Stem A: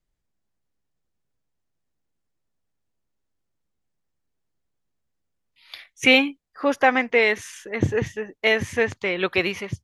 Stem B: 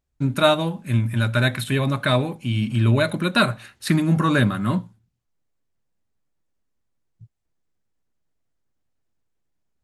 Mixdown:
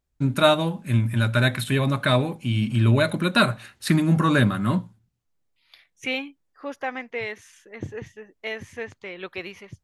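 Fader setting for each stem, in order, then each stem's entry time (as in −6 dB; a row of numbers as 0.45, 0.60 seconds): −12.0, −0.5 decibels; 0.00, 0.00 seconds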